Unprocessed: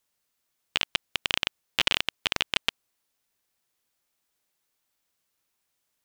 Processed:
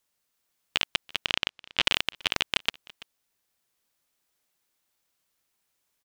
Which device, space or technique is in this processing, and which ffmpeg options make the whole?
ducked delay: -filter_complex "[0:a]asettb=1/sr,asplit=3[s0][s1][s2];[s0]atrim=end=1.254[s3];[s1]atrim=start=1.25:end=1.85,asetpts=PTS-STARTPTS,afade=t=in:d=0.004:c=qsin,afade=t=out:st=0.596:d=0.004:c=qsin,lowpass=6000[s4];[s2]atrim=start=1.846[s5];[s3][s4]acrossfade=d=0.004:c1=hsin:c2=qsin[s6];[s6][s5]acrossfade=d=0.004:c1=qsin:c2=hsin,asplit=3[s7][s8][s9];[s8]adelay=334,volume=0.531[s10];[s9]apad=whole_len=281118[s11];[s10][s11]sidechaincompress=threshold=0.0112:ratio=6:attack=16:release=744[s12];[s7][s12]amix=inputs=2:normalize=0"

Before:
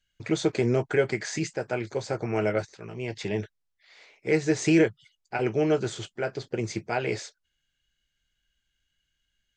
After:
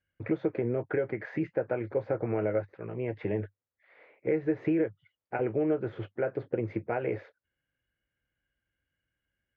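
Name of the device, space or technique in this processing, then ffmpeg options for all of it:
bass amplifier: -af "acompressor=threshold=0.0398:ratio=5,highpass=62,equalizer=f=99:t=q:w=4:g=6,equalizer=f=300:t=q:w=4:g=6,equalizer=f=520:t=q:w=4:g=9,lowpass=f=2100:w=0.5412,lowpass=f=2100:w=1.3066,volume=0.841"

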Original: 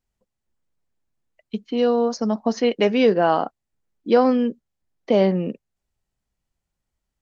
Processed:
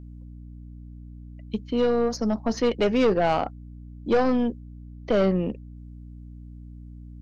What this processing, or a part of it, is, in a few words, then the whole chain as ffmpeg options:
valve amplifier with mains hum: -af "aeval=exprs='(tanh(5.62*val(0)+0.35)-tanh(0.35))/5.62':c=same,aeval=exprs='val(0)+0.01*(sin(2*PI*60*n/s)+sin(2*PI*2*60*n/s)/2+sin(2*PI*3*60*n/s)/3+sin(2*PI*4*60*n/s)/4+sin(2*PI*5*60*n/s)/5)':c=same"

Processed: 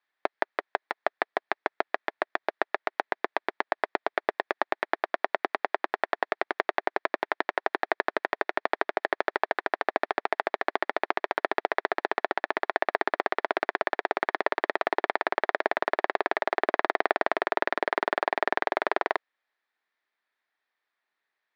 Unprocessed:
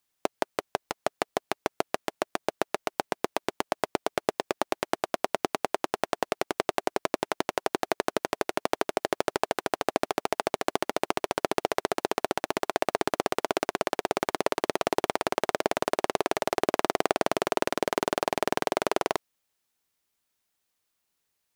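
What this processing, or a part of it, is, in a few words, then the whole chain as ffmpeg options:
phone earpiece: -af "highpass=450,equalizer=f=500:t=q:w=4:g=-4,equalizer=f=1800:t=q:w=4:g=8,equalizer=f=2900:t=q:w=4:g=-8,lowpass=f=3500:w=0.5412,lowpass=f=3500:w=1.3066,volume=1.26"

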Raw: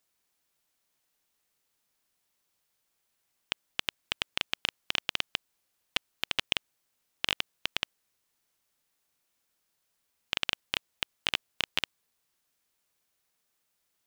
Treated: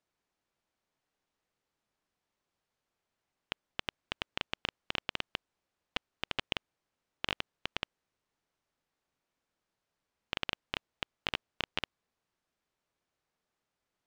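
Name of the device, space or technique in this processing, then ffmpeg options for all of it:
through cloth: -af "lowpass=7000,highshelf=f=2100:g=-11.5,volume=1.12"

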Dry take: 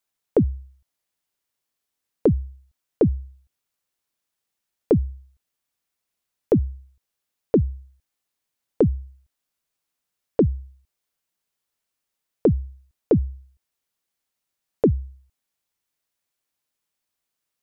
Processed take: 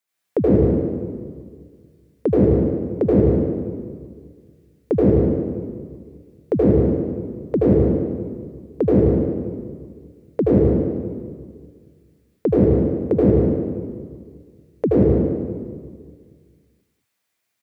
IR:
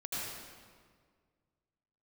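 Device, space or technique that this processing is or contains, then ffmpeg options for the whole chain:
PA in a hall: -filter_complex "[0:a]highpass=f=110:p=1,equalizer=f=2000:t=o:w=0.39:g=6,aecho=1:1:187:0.355[s0];[1:a]atrim=start_sample=2205[s1];[s0][s1]afir=irnorm=-1:irlink=0,volume=1.5"

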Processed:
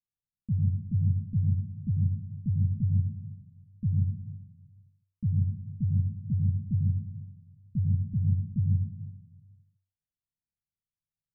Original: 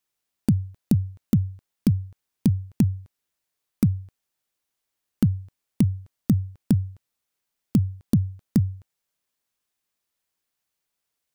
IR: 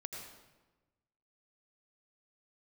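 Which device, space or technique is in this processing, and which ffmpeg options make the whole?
club heard from the street: -filter_complex "[0:a]alimiter=limit=0.141:level=0:latency=1,lowpass=f=180:w=0.5412,lowpass=f=180:w=1.3066[s0];[1:a]atrim=start_sample=2205[s1];[s0][s1]afir=irnorm=-1:irlink=0,volume=1.12"

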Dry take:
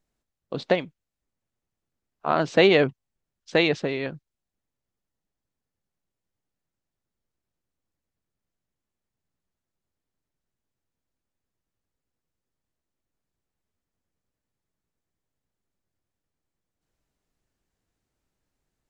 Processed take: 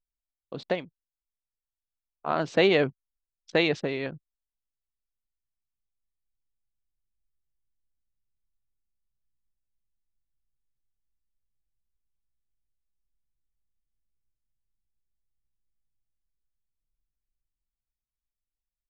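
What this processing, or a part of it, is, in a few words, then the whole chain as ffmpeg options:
voice memo with heavy noise removal: -af "anlmdn=0.0631,dynaudnorm=f=230:g=21:m=5.96,volume=0.473"

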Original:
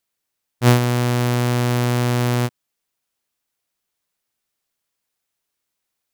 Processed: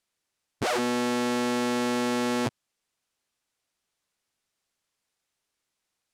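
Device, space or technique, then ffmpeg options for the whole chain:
overflowing digital effects unit: -af "aeval=exprs='(mod(11.2*val(0)+1,2)-1)/11.2':c=same,lowpass=9400"

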